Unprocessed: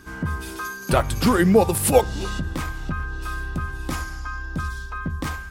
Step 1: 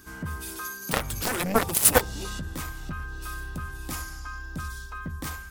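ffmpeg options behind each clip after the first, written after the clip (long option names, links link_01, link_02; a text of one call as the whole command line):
ffmpeg -i in.wav -af "aemphasis=mode=production:type=50kf,aeval=exprs='1.12*(cos(1*acos(clip(val(0)/1.12,-1,1)))-cos(1*PI/2))+0.282*(cos(7*acos(clip(val(0)/1.12,-1,1)))-cos(7*PI/2))':channel_layout=same,volume=-4dB" out.wav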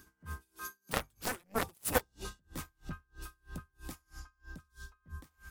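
ffmpeg -i in.wav -af "aeval=exprs='val(0)*pow(10,-36*(0.5-0.5*cos(2*PI*3.1*n/s))/20)':channel_layout=same,volume=-6dB" out.wav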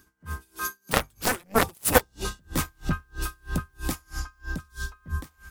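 ffmpeg -i in.wav -af "dynaudnorm=framelen=110:gausssize=7:maxgain=16dB" out.wav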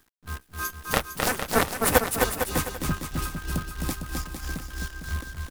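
ffmpeg -i in.wav -filter_complex "[0:a]acrusher=bits=7:dc=4:mix=0:aa=0.000001,asplit=2[link_01][link_02];[link_02]aecho=0:1:260|455|601.2|710.9|793.2:0.631|0.398|0.251|0.158|0.1[link_03];[link_01][link_03]amix=inputs=2:normalize=0,volume=-1dB" out.wav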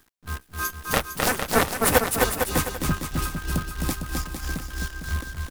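ffmpeg -i in.wav -af "asoftclip=type=tanh:threshold=-7.5dB,volume=3dB" out.wav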